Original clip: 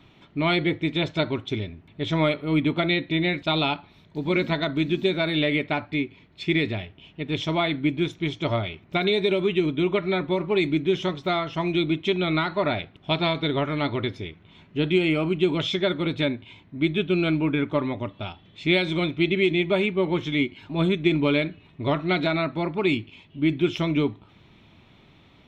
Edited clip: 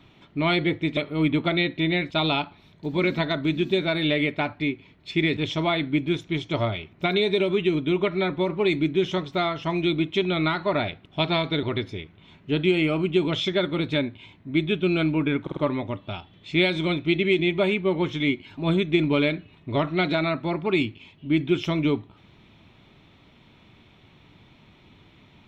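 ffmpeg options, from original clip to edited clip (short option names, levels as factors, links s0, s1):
-filter_complex "[0:a]asplit=7[s0][s1][s2][s3][s4][s5][s6];[s0]atrim=end=0.972[s7];[s1]atrim=start=2.288:end=6.692[s8];[s2]atrim=start=7.278:end=13.542[s9];[s3]atrim=start=13.898:end=17.742[s10];[s4]atrim=start=17.688:end=17.742[s11];[s5]atrim=start=17.688:end=17.742[s12];[s6]atrim=start=17.688[s13];[s7][s8]acrossfade=d=0.004:c1=hsin:c2=hsin[s14];[s14][s9]acrossfade=d=0.004:c1=hsin:c2=hsin[s15];[s15][s10]acrossfade=d=0.004:c1=hsin:c2=hsin[s16];[s16][s11]acrossfade=d=0.004:c1=hsin:c2=hsin[s17];[s17][s12]acrossfade=d=0.004:c1=hsin:c2=hsin[s18];[s18][s13]acrossfade=d=0.004:c1=hsin:c2=hsin"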